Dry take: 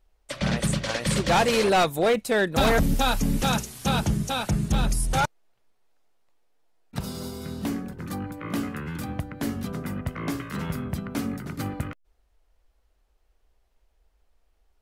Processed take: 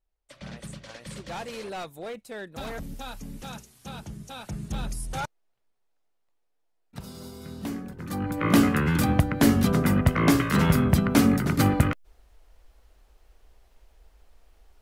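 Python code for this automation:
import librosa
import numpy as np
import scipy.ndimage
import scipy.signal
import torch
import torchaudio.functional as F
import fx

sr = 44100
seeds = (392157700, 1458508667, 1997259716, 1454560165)

y = fx.gain(x, sr, db=fx.line((4.1, -15.5), (4.71, -8.5), (6.99, -8.5), (8.07, -1.5), (8.43, 10.0)))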